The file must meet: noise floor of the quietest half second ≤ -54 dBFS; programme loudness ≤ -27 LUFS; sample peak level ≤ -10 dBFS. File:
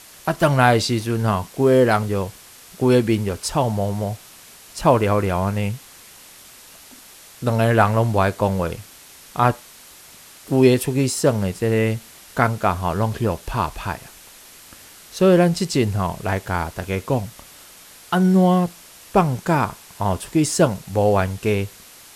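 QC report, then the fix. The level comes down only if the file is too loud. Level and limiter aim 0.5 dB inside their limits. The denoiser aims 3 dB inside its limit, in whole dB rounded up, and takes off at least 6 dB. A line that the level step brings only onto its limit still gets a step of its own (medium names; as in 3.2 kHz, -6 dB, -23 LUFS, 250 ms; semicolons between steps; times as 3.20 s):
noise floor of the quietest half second -45 dBFS: fail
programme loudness -20.0 LUFS: fail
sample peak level -1.5 dBFS: fail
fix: noise reduction 6 dB, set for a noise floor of -45 dBFS; trim -7.5 dB; peak limiter -10.5 dBFS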